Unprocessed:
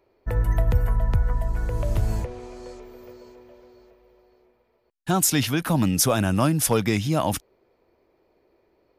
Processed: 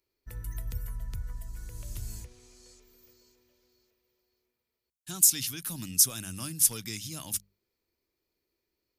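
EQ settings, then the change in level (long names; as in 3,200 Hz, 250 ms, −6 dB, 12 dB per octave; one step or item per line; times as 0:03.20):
bass and treble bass −6 dB, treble +13 dB
guitar amp tone stack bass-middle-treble 6-0-2
mains-hum notches 50/100/150/200 Hz
+3.5 dB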